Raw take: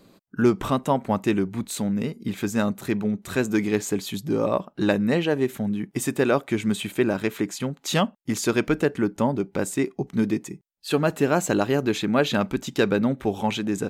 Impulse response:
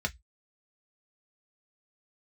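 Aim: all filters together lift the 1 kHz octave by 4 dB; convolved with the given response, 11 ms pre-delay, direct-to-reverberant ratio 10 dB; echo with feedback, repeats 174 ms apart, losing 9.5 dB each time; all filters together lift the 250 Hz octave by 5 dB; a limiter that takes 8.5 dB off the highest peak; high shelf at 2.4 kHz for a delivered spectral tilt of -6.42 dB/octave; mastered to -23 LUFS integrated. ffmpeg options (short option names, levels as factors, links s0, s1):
-filter_complex "[0:a]equalizer=f=250:t=o:g=6,equalizer=f=1000:t=o:g=5.5,highshelf=f=2400:g=-4,alimiter=limit=0.251:level=0:latency=1,aecho=1:1:174|348|522|696:0.335|0.111|0.0365|0.012,asplit=2[s0][s1];[1:a]atrim=start_sample=2205,adelay=11[s2];[s1][s2]afir=irnorm=-1:irlink=0,volume=0.168[s3];[s0][s3]amix=inputs=2:normalize=0,volume=0.944"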